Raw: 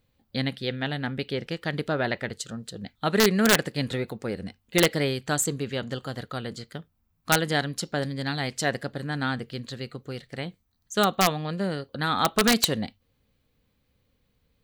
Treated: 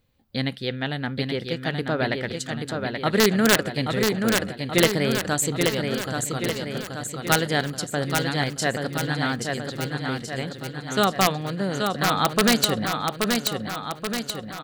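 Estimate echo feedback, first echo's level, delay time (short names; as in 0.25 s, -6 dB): 57%, -4.5 dB, 0.829 s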